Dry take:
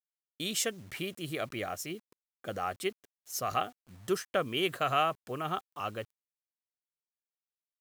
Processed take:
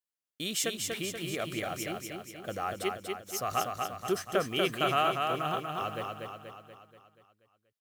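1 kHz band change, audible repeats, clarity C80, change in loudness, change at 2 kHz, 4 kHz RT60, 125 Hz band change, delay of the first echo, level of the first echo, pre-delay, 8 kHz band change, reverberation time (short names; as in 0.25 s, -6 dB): +2.0 dB, 6, none, +1.5 dB, +2.0 dB, none, +2.0 dB, 0.24 s, -4.0 dB, none, +2.0 dB, none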